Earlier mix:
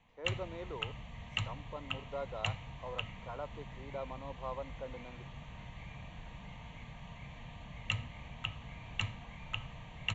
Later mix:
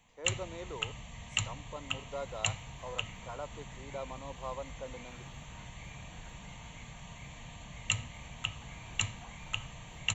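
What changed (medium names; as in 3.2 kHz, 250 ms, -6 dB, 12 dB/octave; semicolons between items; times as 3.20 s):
second sound +6.0 dB; master: remove distance through air 210 m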